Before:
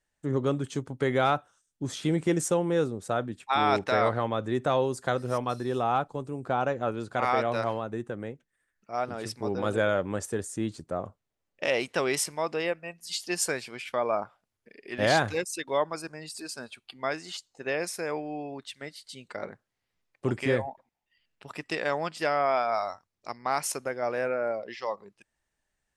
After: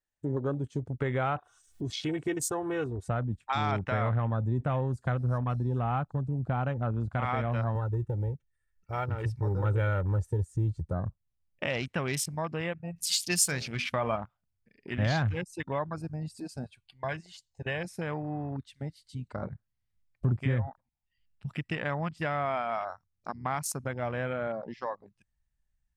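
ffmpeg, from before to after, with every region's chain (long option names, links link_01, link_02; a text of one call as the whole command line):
ffmpeg -i in.wav -filter_complex "[0:a]asettb=1/sr,asplit=3[link_01][link_02][link_03];[link_01]atrim=end=1.364[link_04];[link_02]atrim=start=1.36:end=3.09,asetpts=PTS-STARTPTS,afade=type=in:duration=0.004:curve=qsin,afade=type=out:start_time=1.726:duration=0.004:curve=qsin,lowshelf=frequency=240:gain=-9.5,aecho=1:1:2.7:0.88,atrim=end_sample=76293,acompressor=mode=upward:threshold=-33dB:ratio=2.5:attack=3.2:release=140:knee=2.83:detection=peak[link_05];[link_03]atrim=start=3.086[link_06];[link_04][link_05]acrossfade=duration=0.004:curve1=hsin:curve2=qsin[link_07];[link_07][link_06]acrossfade=duration=0.004:curve1=qsin:curve2=hsin,asettb=1/sr,asplit=3[link_08][link_09][link_10];[link_08]atrim=end=7.754[link_11];[link_09]atrim=start=7.75:end=10.93,asetpts=PTS-STARTPTS,afade=type=in:duration=0.004:curve=qsin,afade=type=out:start_time=3.176:duration=0.004:curve=qsin,acrusher=bits=7:mode=log:mix=0:aa=0.000001,aecho=1:1:2.2:0.75,atrim=end_sample=140238[link_12];[link_10]atrim=start=10.926[link_13];[link_11][link_12]acrossfade=duration=0.004:curve1=hsin:curve2=qsin[link_14];[link_14][link_13]acrossfade=duration=0.004:curve1=qsin:curve2=hsin,asettb=1/sr,asplit=3[link_15][link_16][link_17];[link_15]atrim=end=12.964[link_18];[link_16]atrim=start=12.96:end=14.16,asetpts=PTS-STARTPTS,afade=type=in:duration=0.004:curve=qsin,afade=type=out:start_time=1.196:duration=0.004:curve=qsin,highshelf=frequency=4900:gain=11,bandreject=frequency=81.26:width_type=h:width=4,bandreject=frequency=162.52:width_type=h:width=4,bandreject=frequency=243.78:width_type=h:width=4,bandreject=frequency=325.04:width_type=h:width=4,bandreject=frequency=406.3:width_type=h:width=4,bandreject=frequency=487.56:width_type=h:width=4,bandreject=frequency=568.82:width_type=h:width=4,bandreject=frequency=650.08:width_type=h:width=4,bandreject=frequency=731.34:width_type=h:width=4,bandreject=frequency=812.6:width_type=h:width=4,bandreject=frequency=893.86:width_type=h:width=4,bandreject=frequency=975.12:width_type=h:width=4,bandreject=frequency=1056.38:width_type=h:width=4,bandreject=frequency=1137.64:width_type=h:width=4,bandreject=frequency=1218.9:width_type=h:width=4,bandreject=frequency=1300.16:width_type=h:width=4,bandreject=frequency=1381.42:width_type=h:width=4,acontrast=21[link_19];[link_17]atrim=start=14.156[link_20];[link_18][link_19]acrossfade=duration=0.004:curve1=hsin:curve2=qsin[link_21];[link_21][link_20]acrossfade=duration=0.004:curve1=qsin:curve2=hsin,asettb=1/sr,asplit=3[link_22][link_23][link_24];[link_22]atrim=end=16.644[link_25];[link_23]atrim=start=16.64:end=17.85,asetpts=PTS-STARTPTS,afade=type=in:duration=0.004:curve=qsin,afade=type=out:start_time=1.206:duration=0.004:curve=qsin,asuperstop=centerf=1300:order=20:qfactor=5.3,equalizer=frequency=250:width=2.1:gain=-10.5[link_26];[link_24]atrim=start=17.846[link_27];[link_25][link_26]acrossfade=duration=0.004:curve1=hsin:curve2=qsin[link_28];[link_28][link_27]acrossfade=duration=0.004:curve1=qsin:curve2=hsin,afwtdn=0.0141,asubboost=boost=11:cutoff=120,acompressor=threshold=-39dB:ratio=2,volume=5dB" out.wav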